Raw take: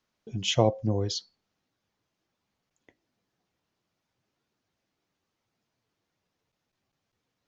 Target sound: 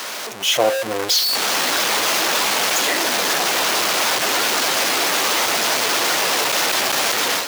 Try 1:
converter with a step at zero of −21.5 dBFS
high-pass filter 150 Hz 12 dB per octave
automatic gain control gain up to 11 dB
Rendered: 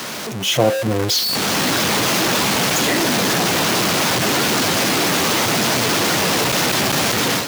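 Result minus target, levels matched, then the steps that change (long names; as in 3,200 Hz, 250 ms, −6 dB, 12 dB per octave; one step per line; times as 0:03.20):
125 Hz band +17.5 dB
change: high-pass filter 510 Hz 12 dB per octave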